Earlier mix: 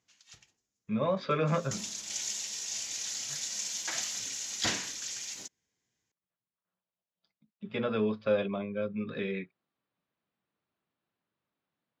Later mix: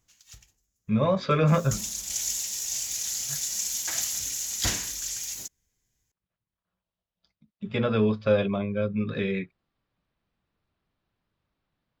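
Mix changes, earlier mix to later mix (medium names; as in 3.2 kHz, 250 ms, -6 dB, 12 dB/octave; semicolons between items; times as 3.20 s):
speech +5.0 dB; master: remove band-pass 180–5100 Hz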